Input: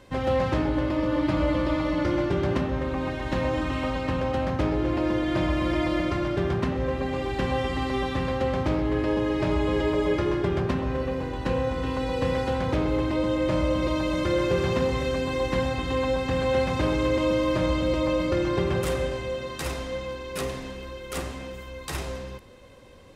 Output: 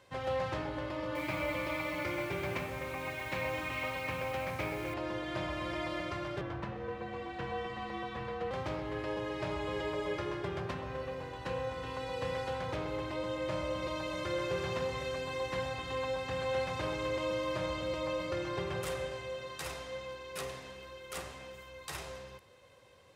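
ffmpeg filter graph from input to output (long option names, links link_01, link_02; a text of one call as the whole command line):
ffmpeg -i in.wav -filter_complex "[0:a]asettb=1/sr,asplit=3[link_01][link_02][link_03];[link_01]atrim=end=1.154[link_04];[link_02]atrim=start=1.15:end=4.94,asetpts=PTS-STARTPTS,afade=type=in:duration=0.004:curve=qsin,afade=type=out:start_time=3.786:duration=0.004:curve=qsin,equalizer=frequency=2300:width=5.9:gain=15,acrusher=bits=6:mix=0:aa=0.5,highpass=55[link_05];[link_03]atrim=start=4.936[link_06];[link_04][link_05]acrossfade=duration=0.004:curve1=hsin:curve2=qsin[link_07];[link_07][link_06]acrossfade=duration=0.004:curve1=qsin:curve2=hsin,asettb=1/sr,asplit=3[link_08][link_09][link_10];[link_08]atrim=end=6.414[link_11];[link_09]atrim=start=6.41:end=8.51,asetpts=PTS-STARTPTS,afade=type=in:duration=0.004:curve=qsin,afade=type=out:start_time=2.096:duration=0.004:curve=qsin,lowpass=frequency=2100:poles=1,afreqshift=-49[link_12];[link_10]atrim=start=8.506[link_13];[link_11][link_12]acrossfade=duration=0.004:curve1=hsin:curve2=qsin[link_14];[link_14][link_13]acrossfade=duration=0.004:curve1=qsin:curve2=hsin,highpass=110,equalizer=frequency=250:width_type=o:width=1.1:gain=-12,volume=-7dB" out.wav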